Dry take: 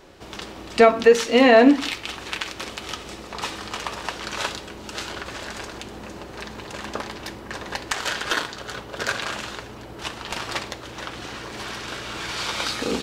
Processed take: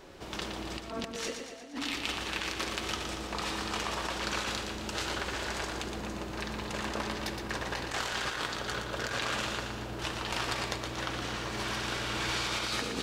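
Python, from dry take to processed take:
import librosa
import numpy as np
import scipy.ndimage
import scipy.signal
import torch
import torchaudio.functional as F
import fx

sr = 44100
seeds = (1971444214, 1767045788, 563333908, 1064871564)

y = fx.over_compress(x, sr, threshold_db=-30.0, ratio=-1.0)
y = fx.echo_feedback(y, sr, ms=117, feedback_pct=58, wet_db=-6.5)
y = y * 10.0 ** (-7.5 / 20.0)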